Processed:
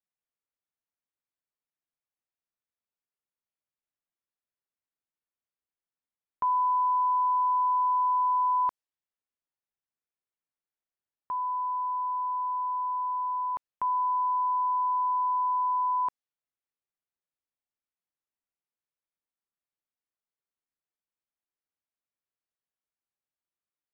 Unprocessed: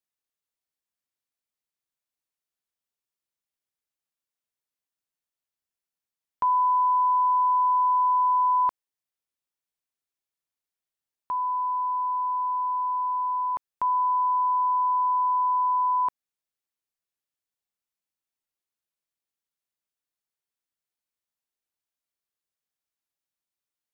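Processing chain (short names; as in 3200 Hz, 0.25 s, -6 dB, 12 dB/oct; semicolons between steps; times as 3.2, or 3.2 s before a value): low-pass opened by the level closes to 2200 Hz; gain -3.5 dB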